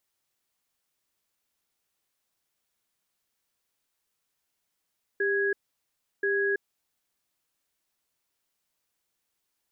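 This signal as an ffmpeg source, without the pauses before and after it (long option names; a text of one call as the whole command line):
ffmpeg -f lavfi -i "aevalsrc='0.0501*(sin(2*PI*398*t)+sin(2*PI*1660*t))*clip(min(mod(t,1.03),0.33-mod(t,1.03))/0.005,0,1)':duration=1.74:sample_rate=44100" out.wav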